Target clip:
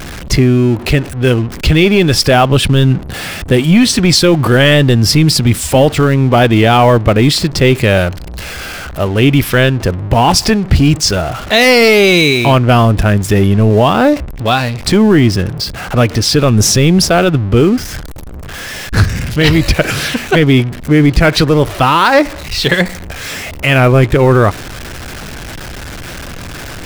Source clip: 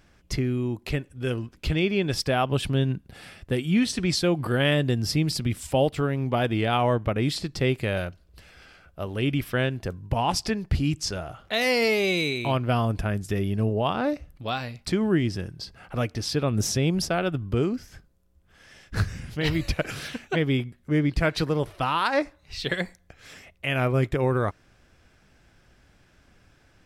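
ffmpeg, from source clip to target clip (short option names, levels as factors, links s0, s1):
-af "aeval=exprs='val(0)+0.5*0.0141*sgn(val(0))':c=same,apsyclip=7.94,anlmdn=158,volume=0.794"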